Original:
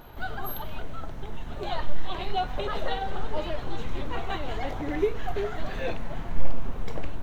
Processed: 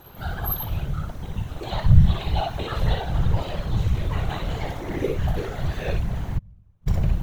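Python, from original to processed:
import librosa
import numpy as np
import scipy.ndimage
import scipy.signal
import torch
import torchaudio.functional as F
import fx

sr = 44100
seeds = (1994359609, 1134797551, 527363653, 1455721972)

y = fx.high_shelf(x, sr, hz=5500.0, db=11.0)
y = fx.room_early_taps(y, sr, ms=(50, 61), db=(-14.5, -4.0))
y = fx.gate_flip(y, sr, shuts_db=-17.0, range_db=-38, at=(6.37, 6.86), fade=0.02)
y = fx.whisperise(y, sr, seeds[0])
y = y * 10.0 ** (-1.5 / 20.0)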